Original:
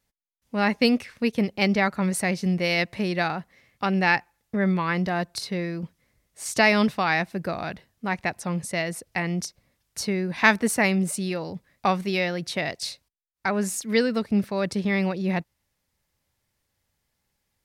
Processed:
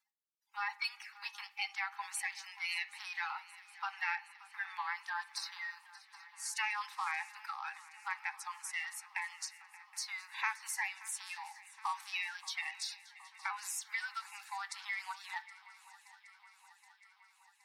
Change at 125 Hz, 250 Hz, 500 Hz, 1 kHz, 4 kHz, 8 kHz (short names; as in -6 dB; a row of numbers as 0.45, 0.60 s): under -40 dB, under -40 dB, under -40 dB, -12.5 dB, -11.5 dB, -9.0 dB